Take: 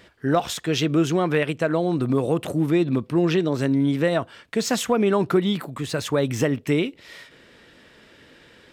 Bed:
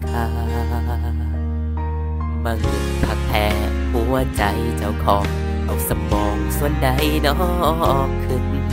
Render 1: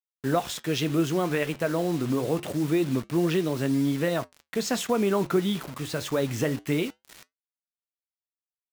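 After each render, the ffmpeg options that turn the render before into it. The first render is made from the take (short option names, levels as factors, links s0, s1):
-af "acrusher=bits=5:mix=0:aa=0.000001,flanger=delay=4:depth=8:regen=-78:speed=0.26:shape=triangular"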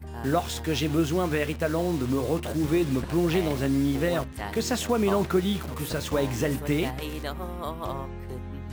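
-filter_complex "[1:a]volume=0.158[s0];[0:a][s0]amix=inputs=2:normalize=0"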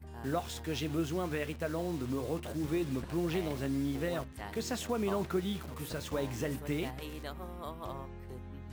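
-af "volume=0.355"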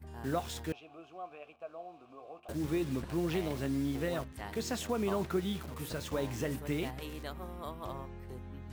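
-filter_complex "[0:a]asettb=1/sr,asplit=3[s0][s1][s2];[s0]atrim=end=0.724[s3];[s1]atrim=start=0.72:end=2.49,asetpts=PTS-STARTPTS,afade=t=in:d=0.004:c=qsin,afade=t=out:st=1.766:d=0.004:c=qsin,asplit=3[s4][s5][s6];[s4]bandpass=f=730:t=q:w=8,volume=1[s7];[s5]bandpass=f=1090:t=q:w=8,volume=0.501[s8];[s6]bandpass=f=2440:t=q:w=8,volume=0.355[s9];[s7][s8][s9]amix=inputs=3:normalize=0[s10];[s2]atrim=start=2.486[s11];[s3][s10]acrossfade=d=0.004:c1=hsin:c2=qsin[s12];[s12][s11]acrossfade=d=0.004:c1=qsin:c2=hsin"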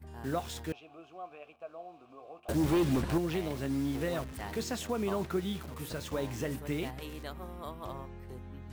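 -filter_complex "[0:a]asettb=1/sr,asplit=3[s0][s1][s2];[s0]atrim=end=2.484[s3];[s1]atrim=start=2.48:end=3.18,asetpts=PTS-STARTPTS,afade=t=in:d=0.004:c=qsin,afade=t=out:st=0.696:d=0.004:c=qsin,aeval=exprs='0.0708*sin(PI/2*1.78*val(0)/0.0708)':c=same[s4];[s2]atrim=start=3.176[s5];[s3][s4]acrossfade=d=0.004:c1=hsin:c2=qsin[s6];[s6][s5]acrossfade=d=0.004:c1=qsin:c2=hsin,asettb=1/sr,asplit=3[s7][s8][s9];[s7]atrim=end=3.704[s10];[s8]atrim=start=3.7:end=4.64,asetpts=PTS-STARTPTS,afade=t=in:d=0.004:c=qsin,afade=t=out:st=0.936:d=0.004:c=qsin,aeval=exprs='val(0)+0.5*0.00668*sgn(val(0))':c=same[s11];[s9]atrim=start=4.636[s12];[s10][s11]acrossfade=d=0.004:c1=hsin:c2=qsin[s13];[s13][s12]acrossfade=d=0.004:c1=qsin:c2=hsin"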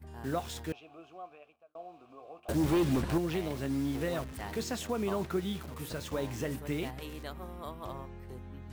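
-filter_complex "[0:a]asplit=2[s0][s1];[s0]atrim=end=1.75,asetpts=PTS-STARTPTS,afade=t=out:st=1.11:d=0.64[s2];[s1]atrim=start=1.75,asetpts=PTS-STARTPTS,afade=t=in:d=0.004:c=hsin[s3];[s2][s3]concat=n=2:v=0:a=1"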